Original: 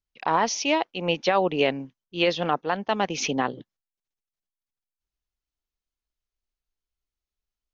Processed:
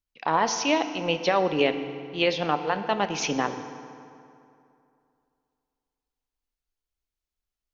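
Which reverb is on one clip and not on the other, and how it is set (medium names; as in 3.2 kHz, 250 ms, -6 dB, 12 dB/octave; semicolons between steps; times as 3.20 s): FDN reverb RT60 2.6 s, high-frequency decay 0.65×, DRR 8.5 dB; trim -1 dB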